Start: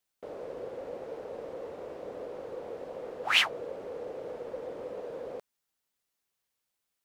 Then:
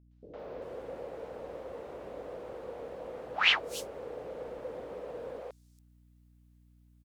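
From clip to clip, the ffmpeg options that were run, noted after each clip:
-filter_complex "[0:a]acrossover=split=400|5500[s0][s1][s2];[s1]adelay=110[s3];[s2]adelay=390[s4];[s0][s3][s4]amix=inputs=3:normalize=0,aeval=exprs='val(0)+0.001*(sin(2*PI*60*n/s)+sin(2*PI*2*60*n/s)/2+sin(2*PI*3*60*n/s)/3+sin(2*PI*4*60*n/s)/4+sin(2*PI*5*60*n/s)/5)':c=same"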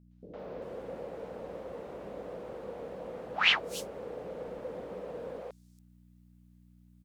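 -af "equalizer=f=190:t=o:w=0.62:g=8.5"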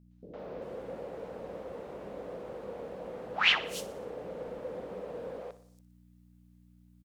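-af "aecho=1:1:60|120|180|240|300:0.168|0.094|0.0526|0.0295|0.0165"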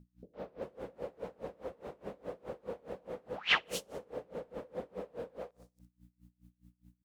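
-af "aeval=exprs='val(0)*pow(10,-27*(0.5-0.5*cos(2*PI*4.8*n/s))/20)':c=same,volume=1.41"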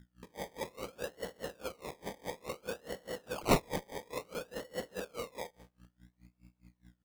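-af "acrusher=samples=25:mix=1:aa=0.000001:lfo=1:lforange=15:lforate=0.58,volume=1.19"

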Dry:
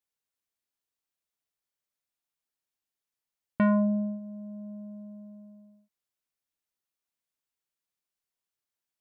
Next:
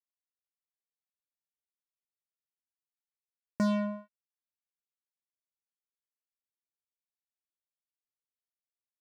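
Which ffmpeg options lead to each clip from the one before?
-af "acrusher=bits=3:mix=0:aa=0.5,volume=0.447"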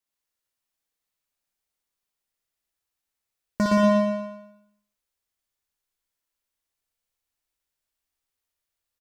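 -filter_complex "[0:a]asplit=2[s0][s1];[s1]aecho=0:1:60|126|198.6|278.5|366.3:0.631|0.398|0.251|0.158|0.1[s2];[s0][s2]amix=inputs=2:normalize=0,asubboost=boost=4:cutoff=77,asplit=2[s3][s4];[s4]aecho=0:1:116|232|348|464|580:0.708|0.283|0.113|0.0453|0.0181[s5];[s3][s5]amix=inputs=2:normalize=0,volume=2.24"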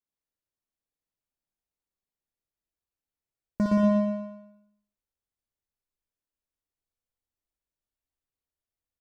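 -af "tiltshelf=f=780:g=6.5,volume=0.447"

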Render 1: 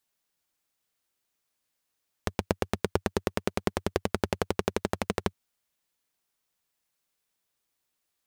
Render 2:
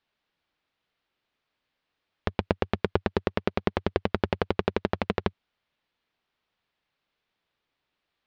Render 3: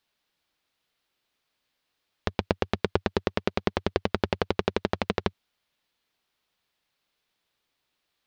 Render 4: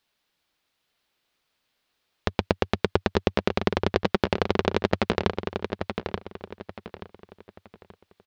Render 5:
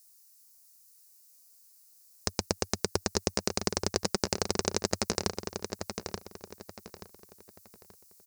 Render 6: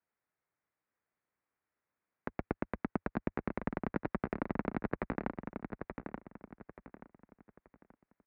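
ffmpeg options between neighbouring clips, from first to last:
-filter_complex "[0:a]lowpass=f=3900:w=0.5412,lowpass=f=3900:w=1.3066,asplit=2[s0][s1];[s1]alimiter=limit=0.133:level=0:latency=1:release=61,volume=0.891[s2];[s0][s2]amix=inputs=2:normalize=0"
-af "bass=f=250:g=-1,treble=f=4000:g=10"
-filter_complex "[0:a]asplit=2[s0][s1];[s1]adelay=880,lowpass=f=4600:p=1,volume=0.501,asplit=2[s2][s3];[s3]adelay=880,lowpass=f=4600:p=1,volume=0.34,asplit=2[s4][s5];[s5]adelay=880,lowpass=f=4600:p=1,volume=0.34,asplit=2[s6][s7];[s7]adelay=880,lowpass=f=4600:p=1,volume=0.34[s8];[s0][s2][s4][s6][s8]amix=inputs=5:normalize=0,volume=1.33"
-af "aexciter=amount=15.5:drive=9.3:freq=5300,volume=0.398"
-af "highpass=f=190:t=q:w=0.5412,highpass=f=190:t=q:w=1.307,lowpass=f=2300:t=q:w=0.5176,lowpass=f=2300:t=q:w=0.7071,lowpass=f=2300:t=q:w=1.932,afreqshift=-180,highpass=50,volume=0.75"

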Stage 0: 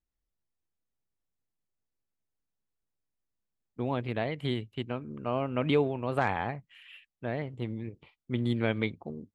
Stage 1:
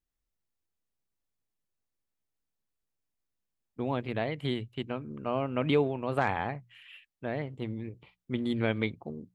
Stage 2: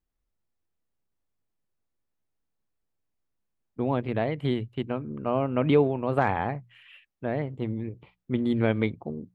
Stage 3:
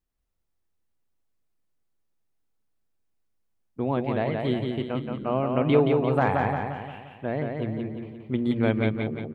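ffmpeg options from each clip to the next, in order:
-af "bandreject=f=60:t=h:w=6,bandreject=f=120:t=h:w=6,bandreject=f=180:t=h:w=6"
-af "highshelf=f=2200:g=-10.5,volume=1.88"
-af "aecho=1:1:175|350|525|700|875|1050:0.631|0.309|0.151|0.0742|0.0364|0.0178"

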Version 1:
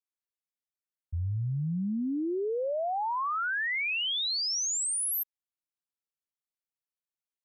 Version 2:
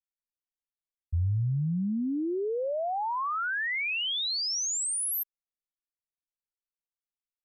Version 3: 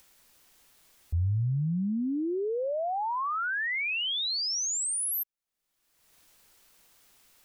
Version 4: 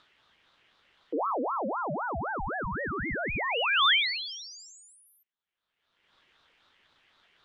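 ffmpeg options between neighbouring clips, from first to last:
-af "anlmdn=0.001,lowshelf=f=96:g=8.5"
-af "acompressor=mode=upward:threshold=0.02:ratio=2.5"
-af "lowpass=f=2500:t=q:w=4.1,aeval=exprs='val(0)*sin(2*PI*800*n/s+800*0.55/3.9*sin(2*PI*3.9*n/s))':c=same"

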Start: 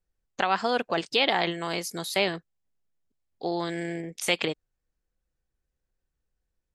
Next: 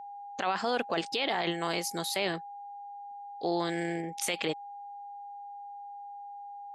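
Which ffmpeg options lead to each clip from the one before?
-af "aeval=exprs='val(0)+0.00891*sin(2*PI*810*n/s)':c=same,alimiter=limit=0.126:level=0:latency=1:release=20,highpass=f=130:p=1"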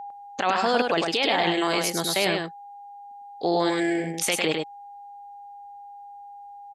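-af "aecho=1:1:103:0.631,volume=2.11"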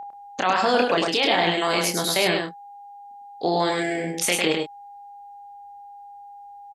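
-filter_complex "[0:a]asplit=2[s0][s1];[s1]adelay=28,volume=0.501[s2];[s0][s2]amix=inputs=2:normalize=0,volume=1.19"

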